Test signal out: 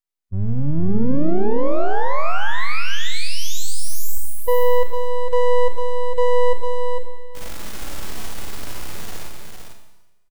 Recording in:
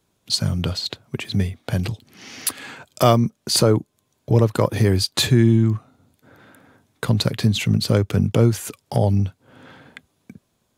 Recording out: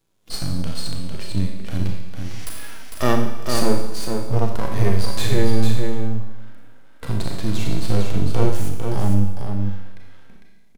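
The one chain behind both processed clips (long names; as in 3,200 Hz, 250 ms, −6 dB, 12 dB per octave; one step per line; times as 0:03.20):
half-wave rectification
four-comb reverb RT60 1.1 s, combs from 28 ms, DRR 8 dB
harmonic and percussive parts rebalanced percussive −15 dB
single-tap delay 452 ms −5.5 dB
level +4 dB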